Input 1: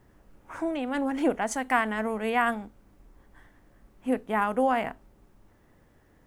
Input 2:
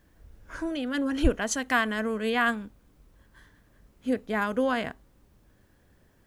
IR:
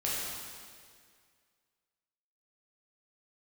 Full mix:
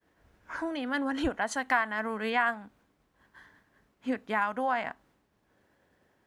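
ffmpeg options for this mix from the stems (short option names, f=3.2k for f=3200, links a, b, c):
-filter_complex "[0:a]highpass=f=450:w=0.5412,highpass=f=450:w=1.3066,volume=-5dB,asplit=2[a][b];[1:a]highpass=f=340:p=1,volume=2dB[c];[b]apad=whole_len=276138[d];[c][d]sidechaincompress=threshold=-34dB:ratio=8:attack=42:release=460[e];[a][e]amix=inputs=2:normalize=0,bandreject=f=1.2k:w=20,agate=range=-33dB:threshold=-60dB:ratio=3:detection=peak,highshelf=f=5.9k:g=-11.5"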